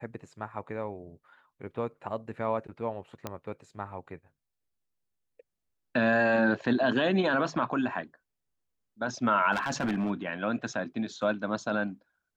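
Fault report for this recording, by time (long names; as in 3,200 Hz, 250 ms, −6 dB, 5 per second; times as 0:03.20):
0:03.27: click −19 dBFS
0:09.52–0:10.11: clipping −25 dBFS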